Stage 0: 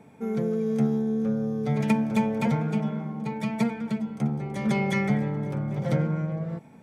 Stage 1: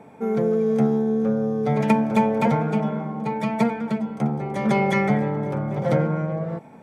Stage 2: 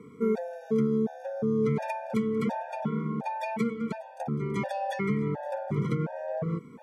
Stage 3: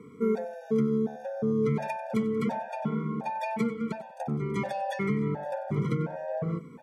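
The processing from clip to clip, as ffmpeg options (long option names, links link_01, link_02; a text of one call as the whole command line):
ffmpeg -i in.wav -af "equalizer=frequency=750:width_type=o:width=2.8:gain=9.5" out.wav
ffmpeg -i in.wav -af "alimiter=limit=-16.5dB:level=0:latency=1:release=430,afftfilt=real='re*gt(sin(2*PI*1.4*pts/sr)*(1-2*mod(floor(b*sr/1024/480),2)),0)':imag='im*gt(sin(2*PI*1.4*pts/sr)*(1-2*mod(floor(b*sr/1024/480),2)),0)':win_size=1024:overlap=0.75" out.wav
ffmpeg -i in.wav -af "aecho=1:1:94|188:0.141|0.0254" out.wav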